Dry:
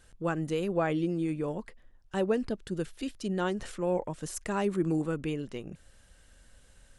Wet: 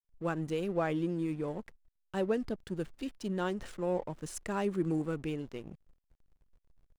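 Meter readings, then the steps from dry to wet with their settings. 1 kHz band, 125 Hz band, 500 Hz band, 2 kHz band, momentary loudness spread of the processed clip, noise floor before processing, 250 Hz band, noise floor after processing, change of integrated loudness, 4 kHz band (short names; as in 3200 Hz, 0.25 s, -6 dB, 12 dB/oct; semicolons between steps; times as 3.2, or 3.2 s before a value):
-3.0 dB, -3.0 dB, -3.0 dB, -3.5 dB, 9 LU, -60 dBFS, -3.0 dB, -79 dBFS, -3.0 dB, -4.5 dB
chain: backlash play -43.5 dBFS; gain -3 dB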